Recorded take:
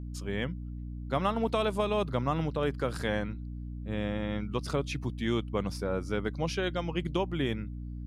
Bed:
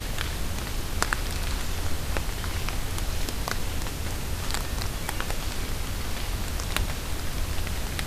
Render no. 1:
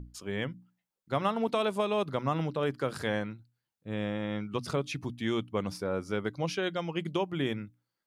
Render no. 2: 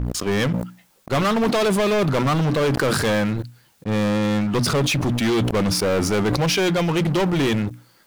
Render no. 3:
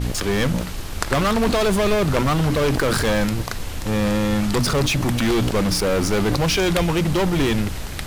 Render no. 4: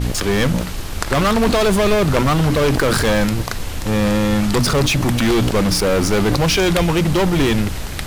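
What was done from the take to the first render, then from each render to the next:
hum notches 60/120/180/240/300 Hz
waveshaping leveller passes 5; decay stretcher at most 28 dB/s
add bed +0.5 dB
trim +3.5 dB; peak limiter -2 dBFS, peak gain reduction 2.5 dB

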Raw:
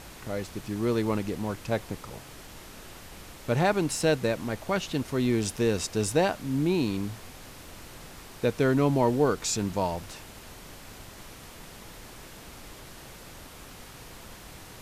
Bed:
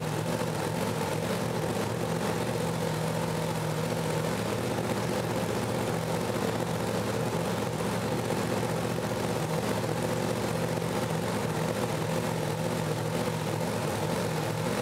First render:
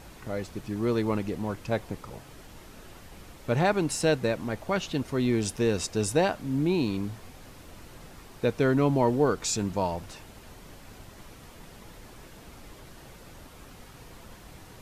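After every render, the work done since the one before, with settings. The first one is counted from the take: noise reduction 6 dB, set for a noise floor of -47 dBFS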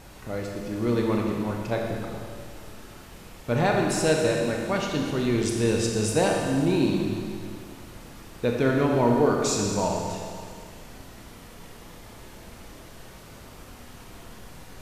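Schroeder reverb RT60 2.2 s, combs from 26 ms, DRR 0 dB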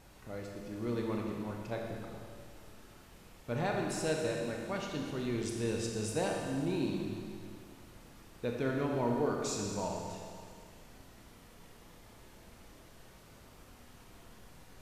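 trim -11 dB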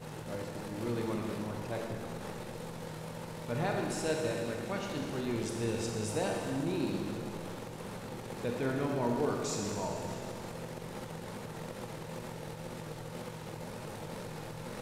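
add bed -13 dB

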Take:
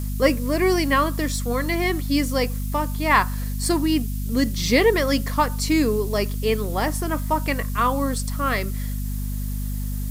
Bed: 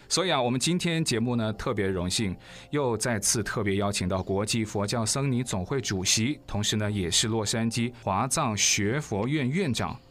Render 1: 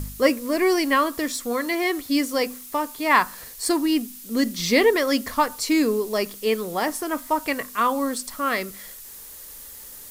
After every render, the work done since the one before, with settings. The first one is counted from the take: de-hum 50 Hz, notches 5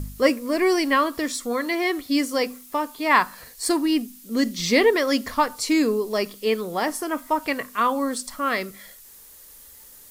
noise print and reduce 6 dB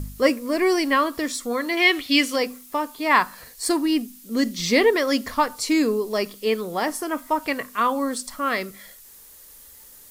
1.77–2.36 s: peaking EQ 2.8 kHz +14 dB 1.3 oct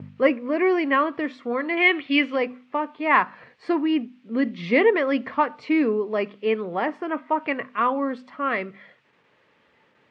gate with hold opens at -36 dBFS; elliptic band-pass 120–2600 Hz, stop band 70 dB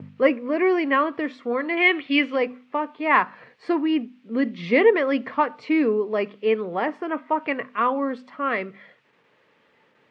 high-pass 100 Hz; peaking EQ 460 Hz +2.5 dB 0.3 oct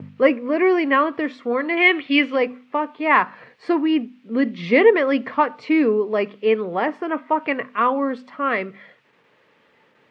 trim +3 dB; peak limiter -3 dBFS, peak gain reduction 1.5 dB

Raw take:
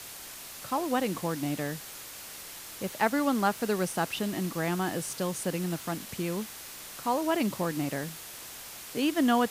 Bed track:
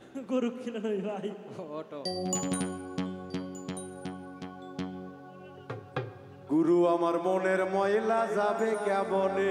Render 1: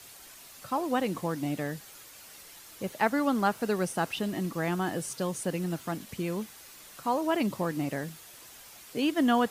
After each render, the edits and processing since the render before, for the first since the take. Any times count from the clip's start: noise reduction 8 dB, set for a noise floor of -44 dBFS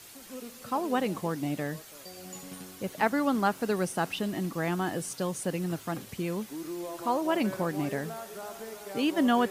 add bed track -13.5 dB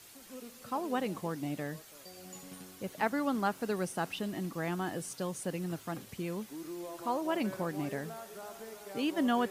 trim -5 dB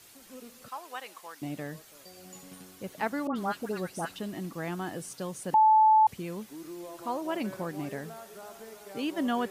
0.68–1.42 s: high-pass 990 Hz; 3.27–4.16 s: phase dispersion highs, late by 90 ms, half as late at 1.7 kHz; 5.54–6.07 s: bleep 870 Hz -16.5 dBFS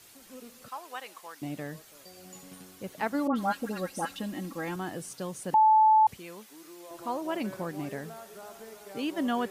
3.14–4.76 s: comb 3.7 ms, depth 66%; 6.17–6.91 s: high-pass 740 Hz 6 dB/octave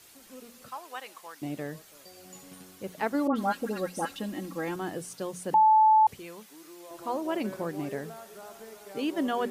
hum notches 60/120/180/240 Hz; dynamic bell 420 Hz, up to +5 dB, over -44 dBFS, Q 1.8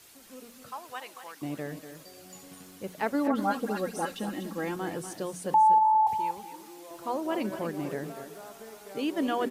on a send: delay 242 ms -10.5 dB; on the sum: modulated delay 242 ms, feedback 31%, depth 129 cents, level -17 dB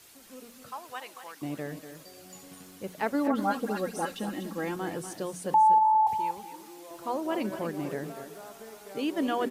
3.18–4.11 s: short-mantissa float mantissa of 6-bit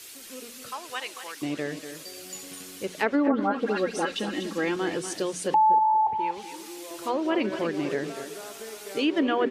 low-pass that closes with the level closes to 1.1 kHz, closed at -22 dBFS; FFT filter 190 Hz 0 dB, 380 Hz +8 dB, 780 Hz +1 dB, 2.6 kHz +11 dB

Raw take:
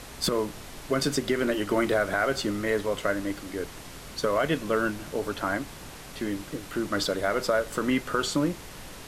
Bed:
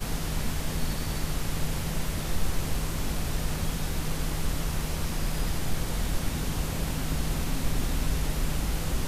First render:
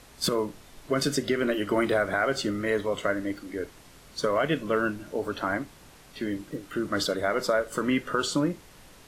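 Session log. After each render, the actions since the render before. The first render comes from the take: noise print and reduce 9 dB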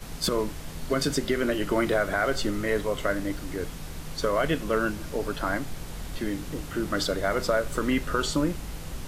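add bed -8 dB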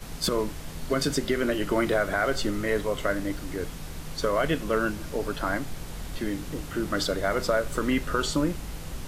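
no audible change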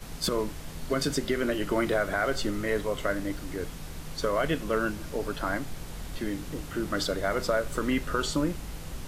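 trim -2 dB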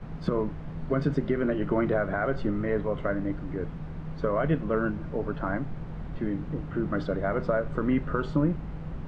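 low-pass 1.5 kHz 12 dB/octave; peaking EQ 150 Hz +8 dB 1.1 oct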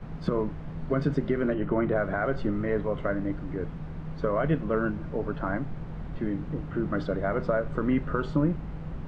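1.54–1.96 s: distance through air 200 m

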